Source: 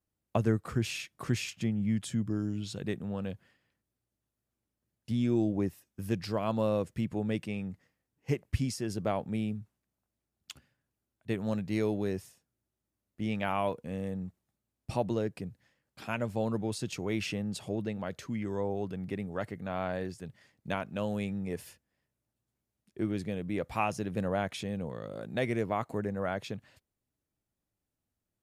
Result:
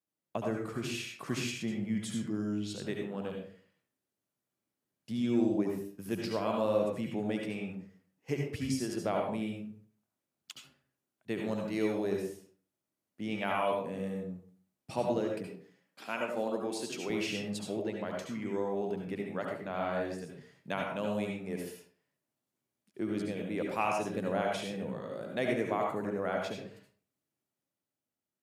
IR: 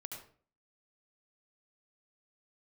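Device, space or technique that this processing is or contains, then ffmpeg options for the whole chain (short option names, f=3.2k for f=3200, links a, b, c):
far laptop microphone: -filter_complex "[1:a]atrim=start_sample=2205[a];[0:a][a]afir=irnorm=-1:irlink=0,highpass=190,dynaudnorm=f=150:g=13:m=4dB,asettb=1/sr,asplit=3[b][c][d];[b]atrim=end=15.474[e];[c]atrim=start=15.47:end=17.1,asetpts=PTS-STARTPTS,afade=t=in:d=0.004:c=qsin,afade=t=out:st=1.626:d=0.004:c=qsin,highpass=230[f];[d]atrim=start=17.096[g];[e][f]acrossfade=d=0.004:c1=hsin:c2=qsin[h];[h][g]acrossfade=d=0.004:c1=qsin:c2=hsin"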